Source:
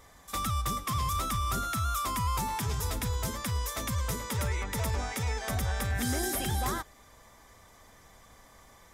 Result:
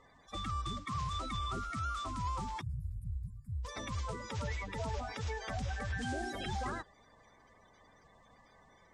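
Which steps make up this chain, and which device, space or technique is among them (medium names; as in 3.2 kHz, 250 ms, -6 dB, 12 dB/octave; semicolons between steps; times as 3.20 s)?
2.61–3.65 s: inverse Chebyshev band-stop 290–6400 Hz, stop band 40 dB; clip after many re-uploads (low-pass 6.1 kHz 24 dB/octave; coarse spectral quantiser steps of 30 dB); trim -6 dB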